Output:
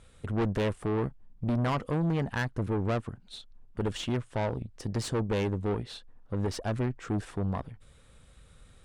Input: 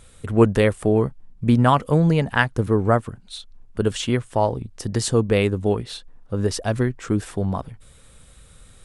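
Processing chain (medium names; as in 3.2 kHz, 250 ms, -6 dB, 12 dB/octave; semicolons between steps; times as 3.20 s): valve stage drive 21 dB, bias 0.55; treble shelf 7 kHz -12 dB; trim -3.5 dB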